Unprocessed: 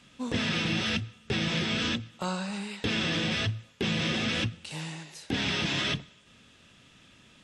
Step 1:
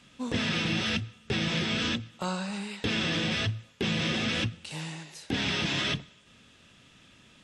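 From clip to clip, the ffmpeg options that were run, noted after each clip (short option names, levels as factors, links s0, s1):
-af anull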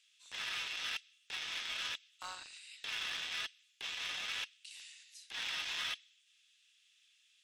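-filter_complex "[0:a]highpass=f=960:w=0.5412,highpass=f=960:w=1.3066,acrossover=split=2200[s0][s1];[s0]acrusher=bits=5:mix=0:aa=0.5[s2];[s2][s1]amix=inputs=2:normalize=0,volume=0.398"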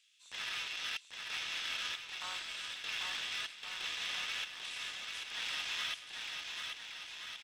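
-af "aecho=1:1:790|1422|1928|2332|2656:0.631|0.398|0.251|0.158|0.1"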